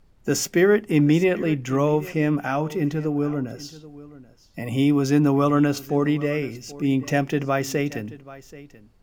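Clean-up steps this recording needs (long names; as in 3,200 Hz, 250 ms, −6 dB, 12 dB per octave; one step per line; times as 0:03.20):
downward expander −42 dBFS, range −21 dB
echo removal 782 ms −18.5 dB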